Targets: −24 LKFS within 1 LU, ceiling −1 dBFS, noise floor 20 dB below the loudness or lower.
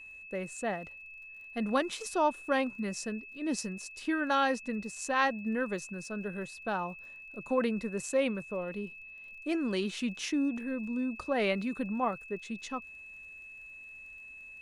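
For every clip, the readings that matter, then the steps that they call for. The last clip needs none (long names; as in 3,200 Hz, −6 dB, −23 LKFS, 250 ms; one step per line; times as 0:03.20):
crackle rate 45 per second; interfering tone 2,600 Hz; level of the tone −46 dBFS; integrated loudness −33.0 LKFS; sample peak −14.0 dBFS; target loudness −24.0 LKFS
→ click removal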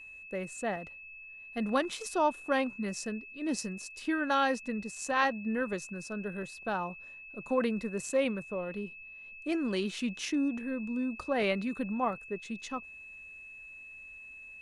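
crackle rate 0 per second; interfering tone 2,600 Hz; level of the tone −46 dBFS
→ notch filter 2,600 Hz, Q 30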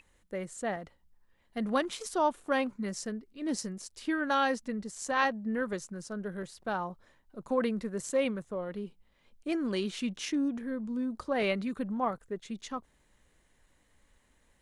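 interfering tone none found; integrated loudness −33.5 LKFS; sample peak −14.5 dBFS; target loudness −24.0 LKFS
→ level +9.5 dB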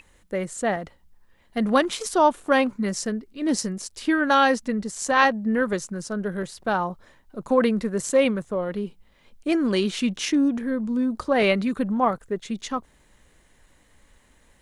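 integrated loudness −24.0 LKFS; sample peak −5.0 dBFS; background noise floor −59 dBFS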